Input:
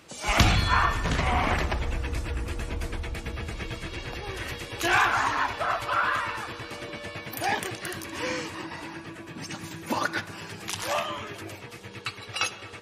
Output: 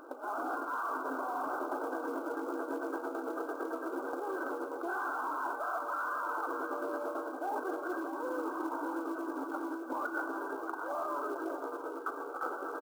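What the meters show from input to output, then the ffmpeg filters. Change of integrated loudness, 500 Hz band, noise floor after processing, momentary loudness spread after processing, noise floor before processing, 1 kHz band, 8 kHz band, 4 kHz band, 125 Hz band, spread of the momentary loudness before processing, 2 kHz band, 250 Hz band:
-8.5 dB, -1.5 dB, -42 dBFS, 3 LU, -44 dBFS, -6.5 dB, -21.0 dB, under -25 dB, under -40 dB, 15 LU, -11.5 dB, -3.0 dB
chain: -filter_complex "[0:a]afftfilt=real='re*between(b*sr/4096,250,1600)':imag='im*between(b*sr/4096,250,1600)':win_size=4096:overlap=0.75,acontrast=64,alimiter=limit=0.133:level=0:latency=1:release=16,areverse,acompressor=threshold=0.0224:ratio=12,areverse,acrusher=bits=6:mode=log:mix=0:aa=0.000001,asplit=2[s0][s1];[s1]aecho=0:1:623:0.299[s2];[s0][s2]amix=inputs=2:normalize=0"

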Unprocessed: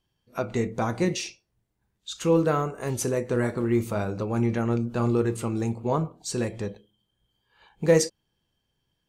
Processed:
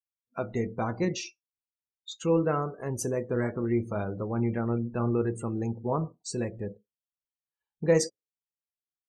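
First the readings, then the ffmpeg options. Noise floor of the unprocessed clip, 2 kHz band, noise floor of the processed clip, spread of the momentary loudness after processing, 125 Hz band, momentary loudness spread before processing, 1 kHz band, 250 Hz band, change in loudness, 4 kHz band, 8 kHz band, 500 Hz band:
-78 dBFS, -4.5 dB, under -85 dBFS, 12 LU, -3.5 dB, 11 LU, -3.5 dB, -3.5 dB, -3.5 dB, -5.0 dB, -4.5 dB, -3.5 dB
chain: -af "afftdn=nr=36:nf=-38,volume=0.668"

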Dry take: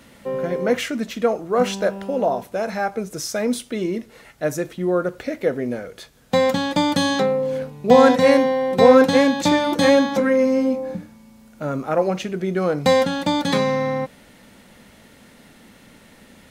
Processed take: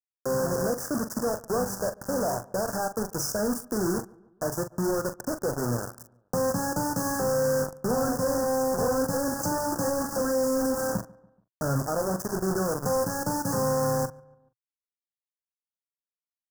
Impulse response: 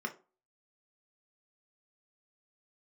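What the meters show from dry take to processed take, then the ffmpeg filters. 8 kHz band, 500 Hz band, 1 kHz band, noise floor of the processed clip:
+2.5 dB, -9.0 dB, -8.0 dB, under -85 dBFS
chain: -filter_complex "[0:a]bandreject=f=50:t=h:w=6,bandreject=f=100:t=h:w=6,bandreject=f=150:t=h:w=6,acrusher=bits=3:mode=log:mix=0:aa=0.000001,adynamicequalizer=threshold=0.0282:dfrequency=200:dqfactor=0.99:tfrequency=200:tqfactor=0.99:attack=5:release=100:ratio=0.375:range=3:mode=cutabove:tftype=bell,acrossover=split=160[s0][s1];[s1]acompressor=threshold=0.0398:ratio=3[s2];[s0][s2]amix=inputs=2:normalize=0,asoftclip=type=hard:threshold=0.0447,acrusher=bits=4:mix=0:aa=0.000001,asuperstop=centerf=2900:order=12:qfactor=0.83,equalizer=f=120:t=o:w=0.56:g=7.5,asplit=2[s3][s4];[s4]adelay=42,volume=0.316[s5];[s3][s5]amix=inputs=2:normalize=0,asplit=2[s6][s7];[s7]adelay=143,lowpass=f=1700:p=1,volume=0.0708,asplit=2[s8][s9];[s9]adelay=143,lowpass=f=1700:p=1,volume=0.5,asplit=2[s10][s11];[s11]adelay=143,lowpass=f=1700:p=1,volume=0.5[s12];[s6][s8][s10][s12]amix=inputs=4:normalize=0"

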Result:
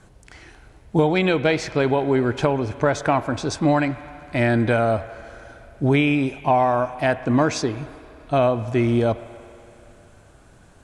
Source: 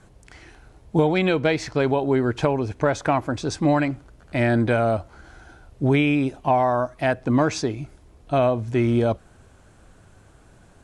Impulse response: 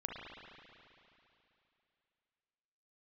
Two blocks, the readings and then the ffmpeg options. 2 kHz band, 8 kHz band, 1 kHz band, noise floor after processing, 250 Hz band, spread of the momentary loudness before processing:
+2.0 dB, +2.0 dB, +2.0 dB, -51 dBFS, +1.0 dB, 8 LU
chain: -filter_complex "[0:a]asplit=2[s0][s1];[1:a]atrim=start_sample=2205,lowshelf=f=460:g=-10[s2];[s1][s2]afir=irnorm=-1:irlink=0,volume=0.376[s3];[s0][s3]amix=inputs=2:normalize=0"

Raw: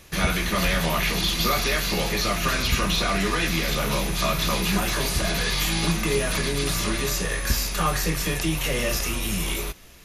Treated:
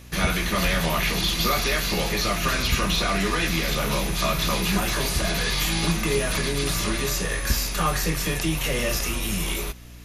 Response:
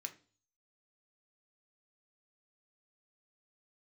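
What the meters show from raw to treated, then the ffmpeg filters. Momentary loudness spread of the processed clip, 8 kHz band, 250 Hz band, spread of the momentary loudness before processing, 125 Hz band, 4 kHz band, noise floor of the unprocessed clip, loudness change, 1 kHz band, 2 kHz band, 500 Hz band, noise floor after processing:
3 LU, 0.0 dB, 0.0 dB, 3 LU, 0.0 dB, 0.0 dB, -30 dBFS, 0.0 dB, 0.0 dB, 0.0 dB, 0.0 dB, -29 dBFS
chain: -af "aeval=exprs='val(0)+0.00708*(sin(2*PI*60*n/s)+sin(2*PI*2*60*n/s)/2+sin(2*PI*3*60*n/s)/3+sin(2*PI*4*60*n/s)/4+sin(2*PI*5*60*n/s)/5)':c=same"

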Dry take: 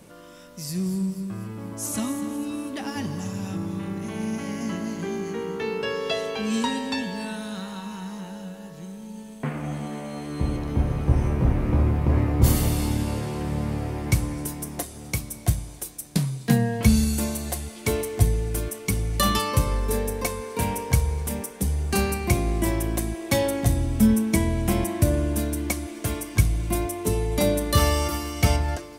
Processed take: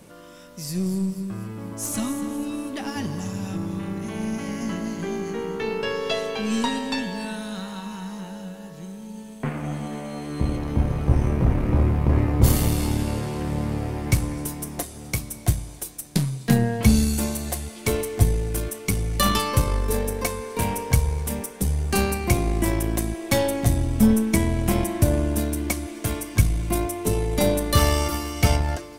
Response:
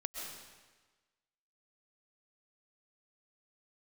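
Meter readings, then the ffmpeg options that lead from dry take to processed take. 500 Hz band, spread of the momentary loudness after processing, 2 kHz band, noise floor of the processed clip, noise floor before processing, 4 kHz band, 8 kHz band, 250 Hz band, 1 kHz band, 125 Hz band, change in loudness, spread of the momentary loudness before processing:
+1.0 dB, 12 LU, +1.0 dB, -41 dBFS, -42 dBFS, +1.0 dB, +1.0 dB, +1.0 dB, +1.5 dB, +1.0 dB, +1.0 dB, 12 LU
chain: -af "aeval=exprs='0.596*(cos(1*acos(clip(val(0)/0.596,-1,1)))-cos(1*PI/2))+0.0266*(cos(8*acos(clip(val(0)/0.596,-1,1)))-cos(8*PI/2))':c=same,volume=1.12"

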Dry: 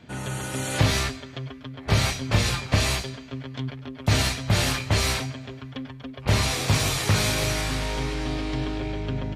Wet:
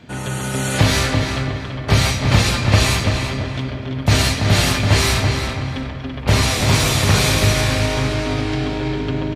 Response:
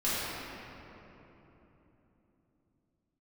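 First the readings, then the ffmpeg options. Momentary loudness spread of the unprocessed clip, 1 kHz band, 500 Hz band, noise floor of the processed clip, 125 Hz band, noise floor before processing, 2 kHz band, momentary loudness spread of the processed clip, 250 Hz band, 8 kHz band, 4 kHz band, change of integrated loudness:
14 LU, +7.5 dB, +8.0 dB, -28 dBFS, +8.5 dB, -42 dBFS, +7.5 dB, 9 LU, +8.5 dB, +6.5 dB, +7.0 dB, +7.0 dB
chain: -filter_complex "[0:a]asplit=2[s0][s1];[s1]adelay=335,lowpass=f=3700:p=1,volume=0.562,asplit=2[s2][s3];[s3]adelay=335,lowpass=f=3700:p=1,volume=0.33,asplit=2[s4][s5];[s5]adelay=335,lowpass=f=3700:p=1,volume=0.33,asplit=2[s6][s7];[s7]adelay=335,lowpass=f=3700:p=1,volume=0.33[s8];[s0][s2][s4][s6][s8]amix=inputs=5:normalize=0,asplit=2[s9][s10];[1:a]atrim=start_sample=2205,lowpass=8800,adelay=74[s11];[s10][s11]afir=irnorm=-1:irlink=0,volume=0.119[s12];[s9][s12]amix=inputs=2:normalize=0,volume=2"

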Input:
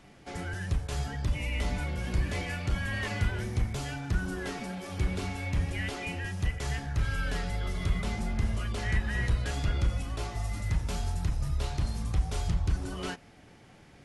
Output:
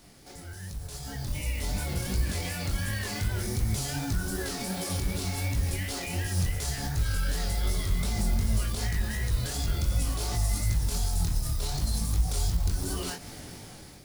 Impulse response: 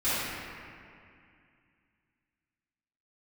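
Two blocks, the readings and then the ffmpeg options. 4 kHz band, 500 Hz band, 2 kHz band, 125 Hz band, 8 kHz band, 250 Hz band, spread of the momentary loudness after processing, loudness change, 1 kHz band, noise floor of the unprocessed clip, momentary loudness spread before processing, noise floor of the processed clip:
+5.0 dB, +0.5 dB, -2.0 dB, +1.5 dB, +11.0 dB, +1.0 dB, 10 LU, +2.0 dB, -0.5 dB, -55 dBFS, 5 LU, -45 dBFS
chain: -af "bass=f=250:g=-6,treble=f=4000:g=7,acrusher=bits=4:mode=log:mix=0:aa=0.000001,acompressor=threshold=0.0112:ratio=6,alimiter=level_in=5.62:limit=0.0631:level=0:latency=1,volume=0.178,dynaudnorm=f=480:g=5:m=4.73,flanger=delay=18:depth=6.2:speed=2.7,lowshelf=f=240:g=11.5,aexciter=amount=3:drive=1.3:freq=3900"

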